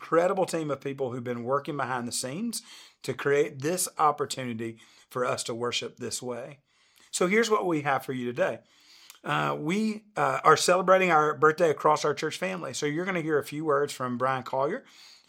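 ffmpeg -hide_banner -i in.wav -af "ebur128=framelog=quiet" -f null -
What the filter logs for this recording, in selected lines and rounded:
Integrated loudness:
  I:         -27.0 LUFS
  Threshold: -37.6 LUFS
Loudness range:
  LRA:         6.6 LU
  Threshold: -47.3 LUFS
  LRA low:   -30.4 LUFS
  LRA high:  -23.8 LUFS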